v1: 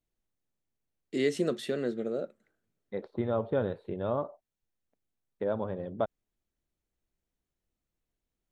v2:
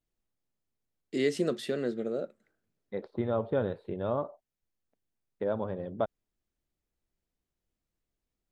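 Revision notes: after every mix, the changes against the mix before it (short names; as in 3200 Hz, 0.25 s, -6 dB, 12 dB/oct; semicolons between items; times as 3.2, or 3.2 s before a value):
master: remove notch 4900 Hz, Q 13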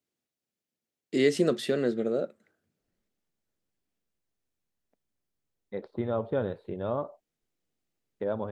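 first voice +4.5 dB; second voice: entry +2.80 s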